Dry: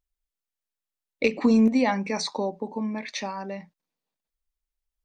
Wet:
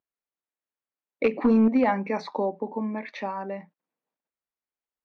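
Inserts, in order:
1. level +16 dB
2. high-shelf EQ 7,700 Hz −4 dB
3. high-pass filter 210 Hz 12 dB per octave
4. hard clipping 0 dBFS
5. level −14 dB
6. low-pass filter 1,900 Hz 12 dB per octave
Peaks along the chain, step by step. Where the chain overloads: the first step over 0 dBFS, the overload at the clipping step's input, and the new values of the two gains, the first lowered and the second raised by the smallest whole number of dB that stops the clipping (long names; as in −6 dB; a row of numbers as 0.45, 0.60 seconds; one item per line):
+6.0, +5.5, +5.5, 0.0, −14.0, −13.5 dBFS
step 1, 5.5 dB
step 1 +10 dB, step 5 −8 dB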